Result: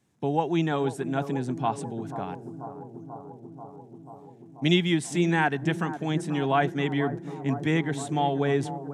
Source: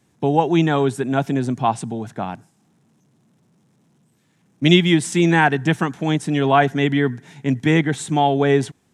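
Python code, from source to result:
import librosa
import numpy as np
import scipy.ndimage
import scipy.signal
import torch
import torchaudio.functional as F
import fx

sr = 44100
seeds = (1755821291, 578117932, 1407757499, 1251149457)

y = fx.echo_bbd(x, sr, ms=487, stages=4096, feedback_pct=77, wet_db=-12.0)
y = y * 10.0 ** (-8.5 / 20.0)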